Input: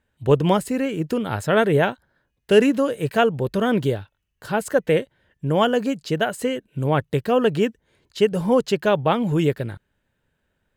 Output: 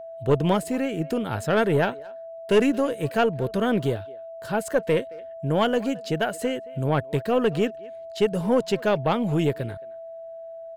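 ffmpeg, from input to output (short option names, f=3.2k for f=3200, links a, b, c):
-filter_complex "[0:a]asplit=2[a][b];[b]adelay=220,highpass=300,lowpass=3.4k,asoftclip=type=hard:threshold=-14dB,volume=-21dB[c];[a][c]amix=inputs=2:normalize=0,aeval=exprs='(tanh(2.51*val(0)+0.25)-tanh(0.25))/2.51':c=same,aeval=exprs='val(0)+0.02*sin(2*PI*660*n/s)':c=same,volume=-2dB"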